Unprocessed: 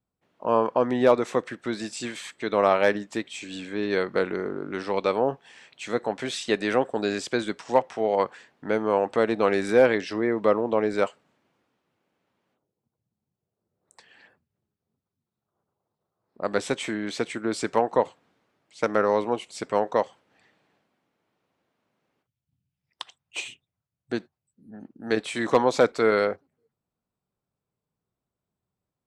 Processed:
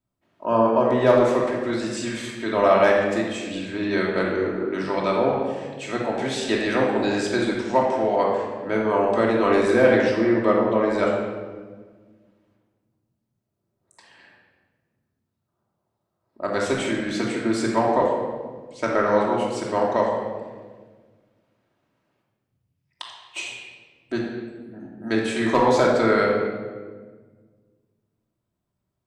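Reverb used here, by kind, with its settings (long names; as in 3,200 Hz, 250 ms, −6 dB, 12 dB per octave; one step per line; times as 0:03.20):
rectangular room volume 1,500 cubic metres, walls mixed, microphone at 2.8 metres
level −1.5 dB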